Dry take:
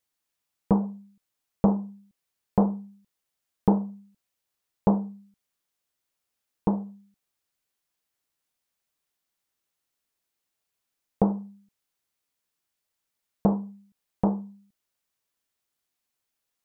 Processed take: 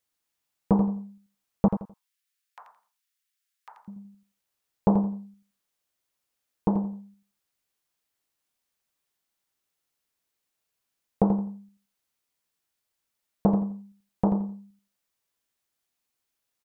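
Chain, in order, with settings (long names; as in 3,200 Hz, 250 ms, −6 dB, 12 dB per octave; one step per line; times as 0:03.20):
0:01.68–0:03.88: inverse Chebyshev high-pass filter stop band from 320 Hz, stop band 70 dB
repeating echo 85 ms, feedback 25%, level −8 dB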